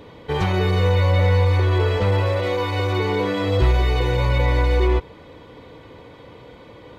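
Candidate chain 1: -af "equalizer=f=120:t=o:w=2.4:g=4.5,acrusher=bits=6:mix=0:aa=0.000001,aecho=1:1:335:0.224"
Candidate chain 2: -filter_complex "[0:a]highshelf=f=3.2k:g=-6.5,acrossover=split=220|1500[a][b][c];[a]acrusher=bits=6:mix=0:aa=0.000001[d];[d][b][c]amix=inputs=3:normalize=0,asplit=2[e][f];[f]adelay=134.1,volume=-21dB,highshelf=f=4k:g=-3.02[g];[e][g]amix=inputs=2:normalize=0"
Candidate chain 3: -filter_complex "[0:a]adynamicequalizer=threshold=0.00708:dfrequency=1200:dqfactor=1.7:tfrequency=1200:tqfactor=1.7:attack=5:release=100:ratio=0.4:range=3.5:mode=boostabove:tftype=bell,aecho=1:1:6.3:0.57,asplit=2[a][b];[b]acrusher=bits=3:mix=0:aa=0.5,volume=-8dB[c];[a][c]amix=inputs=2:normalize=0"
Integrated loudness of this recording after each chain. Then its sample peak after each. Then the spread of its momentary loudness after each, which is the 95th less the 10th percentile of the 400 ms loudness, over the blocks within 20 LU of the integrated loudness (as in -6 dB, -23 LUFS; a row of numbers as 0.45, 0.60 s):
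-16.5, -20.0, -16.5 LUFS; -4.5, -6.0, -4.0 dBFS; 9, 5, 2 LU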